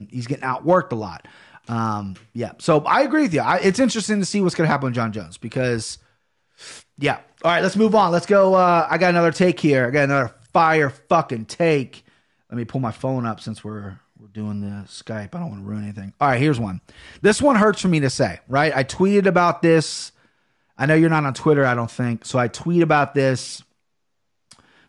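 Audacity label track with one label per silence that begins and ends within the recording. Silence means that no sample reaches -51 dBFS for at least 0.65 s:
23.640000	24.510000	silence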